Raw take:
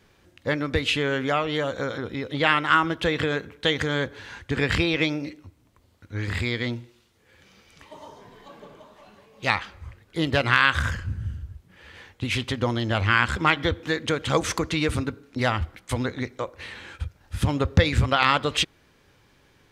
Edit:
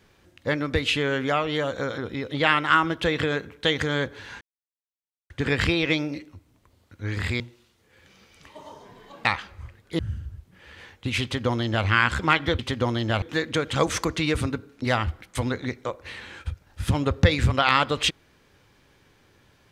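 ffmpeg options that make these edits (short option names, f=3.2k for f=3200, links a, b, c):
-filter_complex "[0:a]asplit=7[a][b][c][d][e][f][g];[a]atrim=end=4.41,asetpts=PTS-STARTPTS,afade=t=out:st=4.406:d=0.004:c=hsin,apad=pad_dur=0.89[h];[b]atrim=start=4.41:end=6.512,asetpts=PTS-STARTPTS,afade=t=in:d=0.004:c=hsin[i];[c]atrim=start=6.758:end=8.612[j];[d]atrim=start=9.478:end=10.222[k];[e]atrim=start=11.158:end=13.762[l];[f]atrim=start=12.398:end=13.032[m];[g]atrim=start=13.758[n];[h][i]concat=n=2:v=0:a=1[o];[o][j]acrossfade=d=0.004:c1=hsin:c2=hsin[p];[p][k]acrossfade=d=0.004:c1=hsin:c2=hsin[q];[q][l]acrossfade=d=0.004:c1=hsin:c2=hsin[r];[r][m]acrossfade=d=0.004:c1=hsin:c2=hsin[s];[s][n]acrossfade=d=0.004:c1=hsin:c2=hsin"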